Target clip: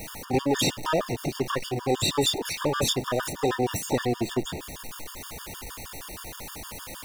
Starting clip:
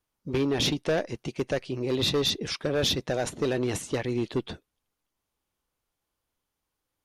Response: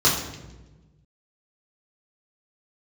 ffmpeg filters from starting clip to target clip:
-filter_complex "[0:a]aeval=exprs='val(0)+0.5*0.0251*sgn(val(0))':channel_layout=same,asplit=2[link_01][link_02];[link_02]asetrate=88200,aresample=44100,atempo=0.5,volume=-5dB[link_03];[link_01][link_03]amix=inputs=2:normalize=0,afftfilt=real='re*gt(sin(2*PI*6.4*pts/sr)*(1-2*mod(floor(b*sr/1024/920),2)),0)':imag='im*gt(sin(2*PI*6.4*pts/sr)*(1-2*mod(floor(b*sr/1024/920),2)),0)':win_size=1024:overlap=0.75,volume=1.5dB"

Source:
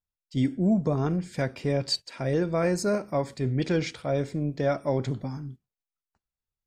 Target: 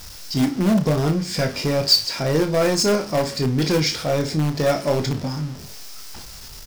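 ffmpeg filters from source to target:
ffmpeg -i in.wav -filter_complex "[0:a]aeval=exprs='val(0)+0.5*0.0133*sgn(val(0))':channel_layout=same,equalizer=frequency=5200:width_type=o:width=0.55:gain=11.5,asplit=2[link_01][link_02];[link_02]adelay=20,volume=-9dB[link_03];[link_01][link_03]amix=inputs=2:normalize=0,asplit=2[link_04][link_05];[link_05]aeval=exprs='(mod(7.94*val(0)+1,2)-1)/7.94':channel_layout=same,volume=-10.5dB[link_06];[link_04][link_06]amix=inputs=2:normalize=0,aecho=1:1:32|59:0.335|0.158,volume=3dB" out.wav

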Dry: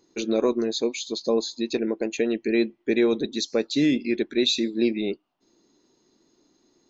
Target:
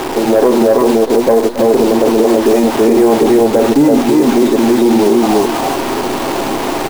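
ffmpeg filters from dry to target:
ffmpeg -i in.wav -filter_complex "[0:a]aeval=exprs='val(0)+0.5*0.0355*sgn(val(0))':channel_layout=same,lowpass=1000,equalizer=frequency=790:width_type=o:width=1.4:gain=14.5,aecho=1:1:7.4:0.34,acrusher=bits=6:dc=4:mix=0:aa=0.000001,asoftclip=type=tanh:threshold=-6.5dB,asplit=2[link_01][link_02];[link_02]aecho=0:1:48|271|327|336|640:0.355|0.112|0.708|0.531|0.141[link_03];[link_01][link_03]amix=inputs=2:normalize=0,alimiter=level_in=12dB:limit=-1dB:release=50:level=0:latency=1,volume=-1dB" out.wav

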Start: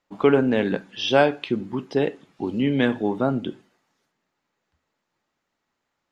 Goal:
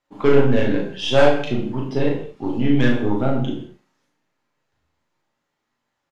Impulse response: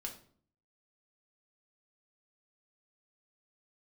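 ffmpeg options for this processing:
-filter_complex "[0:a]aeval=exprs='0.596*(cos(1*acos(clip(val(0)/0.596,-1,1)))-cos(1*PI/2))+0.0473*(cos(6*acos(clip(val(0)/0.596,-1,1)))-cos(6*PI/2))':channel_layout=same,asplit=2[link_01][link_02];[link_02]adelay=38,volume=-4dB[link_03];[link_01][link_03]amix=inputs=2:normalize=0[link_04];[1:a]atrim=start_sample=2205,atrim=end_sample=6615,asetrate=27342,aresample=44100[link_05];[link_04][link_05]afir=irnorm=-1:irlink=0,volume=-1dB"

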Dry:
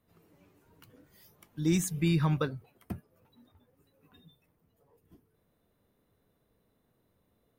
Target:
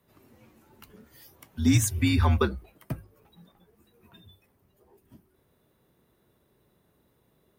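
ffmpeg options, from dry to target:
ffmpeg -i in.wav -af "afreqshift=-67,highpass=63,bandreject=frequency=50:width_type=h:width=6,bandreject=frequency=100:width_type=h:width=6,volume=7dB" out.wav

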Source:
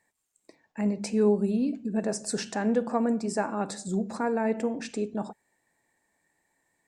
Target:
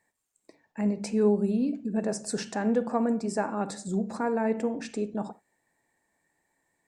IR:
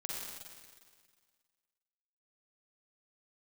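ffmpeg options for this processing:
-filter_complex "[0:a]asplit=2[link_01][link_02];[1:a]atrim=start_sample=2205,atrim=end_sample=3969,lowpass=2200[link_03];[link_02][link_03]afir=irnorm=-1:irlink=0,volume=-9dB[link_04];[link_01][link_04]amix=inputs=2:normalize=0,volume=-2dB"

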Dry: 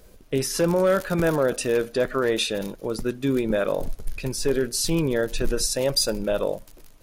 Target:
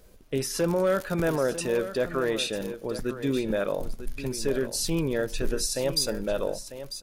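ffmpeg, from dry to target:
ffmpeg -i in.wav -af "aecho=1:1:947:0.251,volume=-4dB" out.wav

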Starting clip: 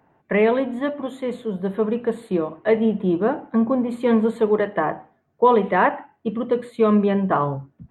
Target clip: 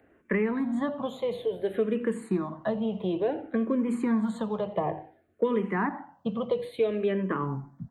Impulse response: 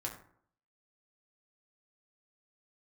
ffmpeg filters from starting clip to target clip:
-filter_complex "[0:a]aecho=1:1:85:0.1,asplit=2[link_01][link_02];[1:a]atrim=start_sample=2205,lowpass=1000[link_03];[link_02][link_03]afir=irnorm=-1:irlink=0,volume=-21dB[link_04];[link_01][link_04]amix=inputs=2:normalize=0,acrossover=split=360|2200[link_05][link_06][link_07];[link_05]acompressor=threshold=-29dB:ratio=4[link_08];[link_06]acompressor=threshold=-31dB:ratio=4[link_09];[link_07]acompressor=threshold=-48dB:ratio=4[link_10];[link_08][link_09][link_10]amix=inputs=3:normalize=0,asplit=2[link_11][link_12];[link_12]afreqshift=-0.57[link_13];[link_11][link_13]amix=inputs=2:normalize=1,volume=3dB"

